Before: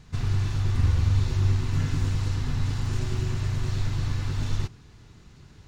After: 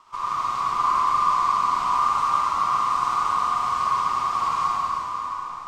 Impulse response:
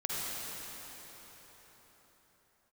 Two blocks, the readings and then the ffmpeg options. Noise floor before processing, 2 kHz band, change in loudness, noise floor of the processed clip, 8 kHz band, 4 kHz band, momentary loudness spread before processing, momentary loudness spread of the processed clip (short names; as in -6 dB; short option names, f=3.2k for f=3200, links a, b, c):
-52 dBFS, +5.5 dB, +4.5 dB, -34 dBFS, n/a, +3.0 dB, 6 LU, 6 LU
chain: -filter_complex "[0:a]aeval=exprs='val(0)*sin(2*PI*1100*n/s)':c=same,aeval=exprs='0.266*(cos(1*acos(clip(val(0)/0.266,-1,1)))-cos(1*PI/2))+0.00473*(cos(6*acos(clip(val(0)/0.266,-1,1)))-cos(6*PI/2))+0.00668*(cos(8*acos(clip(val(0)/0.266,-1,1)))-cos(8*PI/2))':c=same[a];[1:a]atrim=start_sample=2205[b];[a][b]afir=irnorm=-1:irlink=0"